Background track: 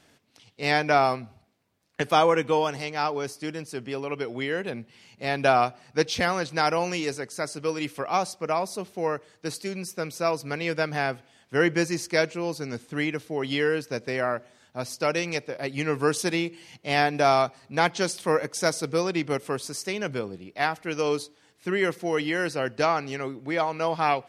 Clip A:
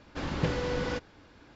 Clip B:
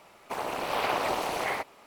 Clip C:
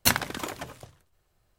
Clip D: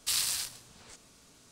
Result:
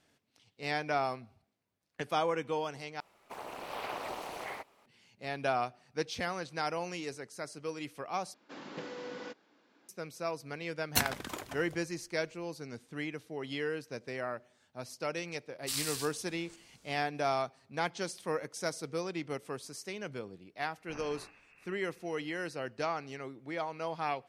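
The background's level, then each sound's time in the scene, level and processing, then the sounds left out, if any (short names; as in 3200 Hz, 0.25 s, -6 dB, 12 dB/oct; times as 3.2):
background track -11 dB
3 replace with B -11 dB
8.34 replace with A -10.5 dB + HPF 210 Hz 24 dB/oct
10.9 add C -7 dB
15.6 add D -6 dB, fades 0.10 s
20.82 add D -5 dB + inverted band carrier 2700 Hz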